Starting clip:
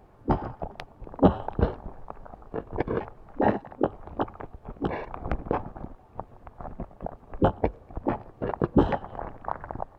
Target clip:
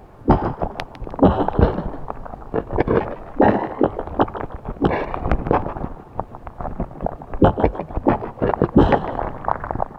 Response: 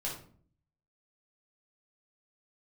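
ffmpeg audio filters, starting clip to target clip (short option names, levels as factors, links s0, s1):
-filter_complex "[0:a]asplit=4[s0][s1][s2][s3];[s1]adelay=153,afreqshift=110,volume=0.188[s4];[s2]adelay=306,afreqshift=220,volume=0.0624[s5];[s3]adelay=459,afreqshift=330,volume=0.0204[s6];[s0][s4][s5][s6]amix=inputs=4:normalize=0,alimiter=level_in=3.98:limit=0.891:release=50:level=0:latency=1,volume=0.891"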